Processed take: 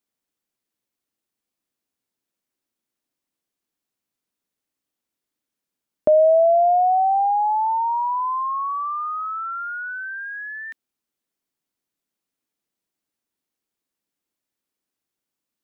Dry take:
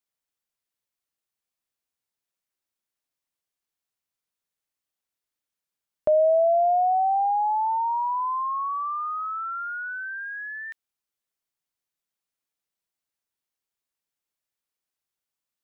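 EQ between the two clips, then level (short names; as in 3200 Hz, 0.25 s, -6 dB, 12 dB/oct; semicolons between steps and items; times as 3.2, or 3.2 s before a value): bell 270 Hz +11 dB 1.4 oct; +2.0 dB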